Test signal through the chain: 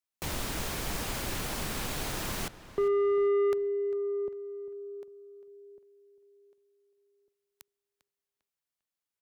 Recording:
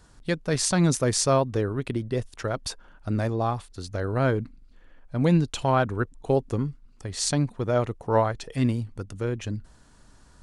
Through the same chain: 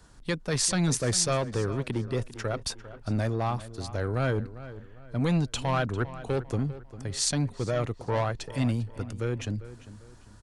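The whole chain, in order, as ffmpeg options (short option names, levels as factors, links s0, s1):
-filter_complex "[0:a]acrossover=split=120|1500|2200[s0][s1][s2][s3];[s1]asoftclip=type=tanh:threshold=0.0631[s4];[s0][s4][s2][s3]amix=inputs=4:normalize=0,asplit=2[s5][s6];[s6]adelay=399,lowpass=f=3500:p=1,volume=0.178,asplit=2[s7][s8];[s8]adelay=399,lowpass=f=3500:p=1,volume=0.37,asplit=2[s9][s10];[s10]adelay=399,lowpass=f=3500:p=1,volume=0.37[s11];[s5][s7][s9][s11]amix=inputs=4:normalize=0"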